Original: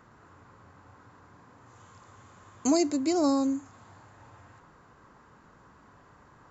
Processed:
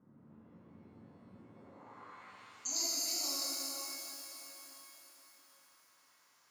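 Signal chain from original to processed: band-pass sweep 210 Hz -> 5400 Hz, 1.31–2.61; shimmer reverb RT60 3.8 s, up +12 st, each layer -8 dB, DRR -8 dB; gain -2 dB

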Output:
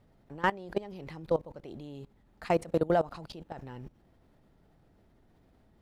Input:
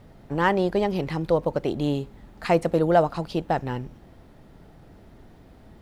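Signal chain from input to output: level quantiser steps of 20 dB; gain -3.5 dB

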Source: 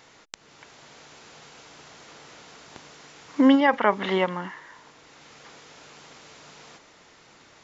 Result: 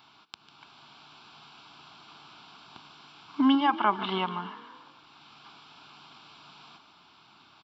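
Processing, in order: HPF 190 Hz 6 dB/oct; fixed phaser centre 1900 Hz, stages 6; frequency-shifting echo 0.147 s, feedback 53%, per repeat +32 Hz, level -16 dB

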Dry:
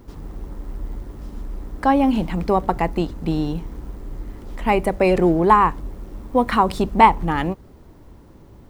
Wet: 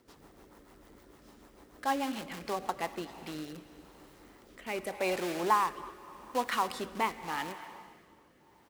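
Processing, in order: in parallel at -11.5 dB: wrapped overs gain 18.5 dB; on the sum: speakerphone echo 0.25 s, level -18 dB; plate-style reverb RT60 3 s, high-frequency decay 0.95×, DRR 12 dB; rotary speaker horn 6.7 Hz, later 0.85 Hz, at 2.45; HPF 1000 Hz 6 dB/oct; gain -6.5 dB

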